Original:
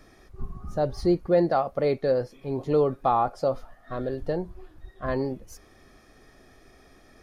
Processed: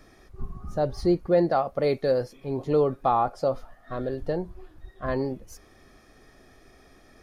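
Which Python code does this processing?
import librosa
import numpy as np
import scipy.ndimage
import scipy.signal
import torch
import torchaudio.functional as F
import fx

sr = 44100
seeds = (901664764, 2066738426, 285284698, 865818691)

y = fx.high_shelf(x, sr, hz=4100.0, db=7.0, at=(1.82, 2.33))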